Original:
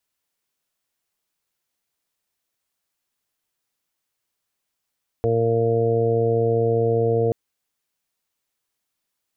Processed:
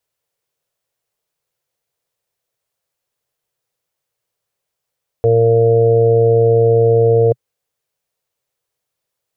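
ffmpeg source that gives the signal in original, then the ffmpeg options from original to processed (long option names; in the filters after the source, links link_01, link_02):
-f lavfi -i "aevalsrc='0.0708*sin(2*PI*115*t)+0.0282*sin(2*PI*230*t)+0.0335*sin(2*PI*345*t)+0.119*sin(2*PI*460*t)+0.0251*sin(2*PI*575*t)+0.0335*sin(2*PI*690*t)':duration=2.08:sample_rate=44100"
-af "equalizer=frequency=125:width_type=o:width=1:gain=10,equalizer=frequency=250:width_type=o:width=1:gain=-8,equalizer=frequency=500:width_type=o:width=1:gain=11"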